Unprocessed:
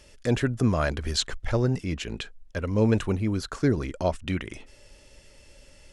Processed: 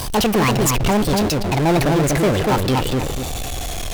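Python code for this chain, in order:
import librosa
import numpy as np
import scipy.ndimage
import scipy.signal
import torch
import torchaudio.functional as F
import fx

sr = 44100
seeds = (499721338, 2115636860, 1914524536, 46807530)

y = fx.speed_glide(x, sr, from_pct=179, to_pct=122)
y = fx.echo_filtered(y, sr, ms=241, feedback_pct=15, hz=940.0, wet_db=-4)
y = fx.power_curve(y, sr, exponent=0.35)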